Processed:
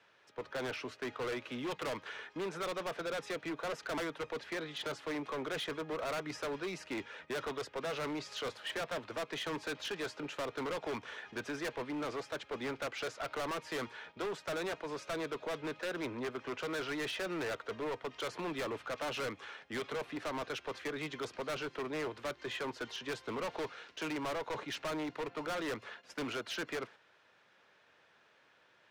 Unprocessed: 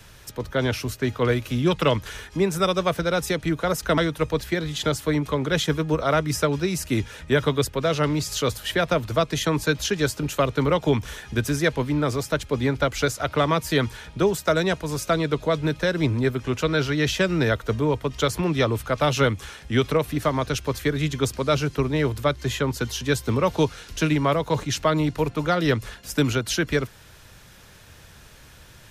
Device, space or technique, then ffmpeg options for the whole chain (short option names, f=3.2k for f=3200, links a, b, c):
walkie-talkie: -af "highpass=410,lowpass=2.8k,asoftclip=type=hard:threshold=-29.5dB,agate=range=-7dB:threshold=-47dB:ratio=16:detection=peak,volume=-5.5dB"